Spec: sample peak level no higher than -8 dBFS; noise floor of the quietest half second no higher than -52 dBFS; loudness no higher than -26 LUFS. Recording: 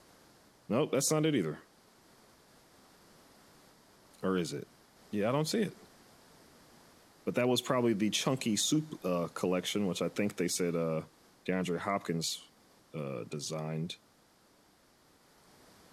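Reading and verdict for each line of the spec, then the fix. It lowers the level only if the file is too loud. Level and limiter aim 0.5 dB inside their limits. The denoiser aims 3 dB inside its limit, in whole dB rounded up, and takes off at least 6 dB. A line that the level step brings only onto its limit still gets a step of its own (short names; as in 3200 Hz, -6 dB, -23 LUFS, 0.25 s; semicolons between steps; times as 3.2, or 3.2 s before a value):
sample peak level -14.5 dBFS: OK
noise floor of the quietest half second -65 dBFS: OK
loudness -33.0 LUFS: OK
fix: none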